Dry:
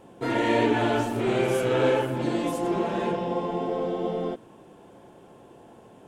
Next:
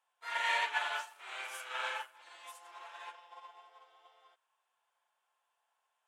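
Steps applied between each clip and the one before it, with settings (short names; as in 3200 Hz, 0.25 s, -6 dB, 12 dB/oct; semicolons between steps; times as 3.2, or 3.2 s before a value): HPF 1000 Hz 24 dB/oct; upward expander 2.5:1, over -43 dBFS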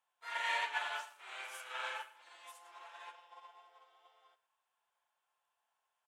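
echo 0.111 s -17.5 dB; gain -3.5 dB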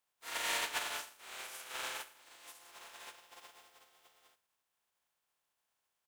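spectral contrast lowered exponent 0.41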